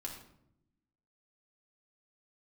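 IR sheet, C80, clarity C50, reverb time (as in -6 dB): 8.5 dB, 5.5 dB, 0.75 s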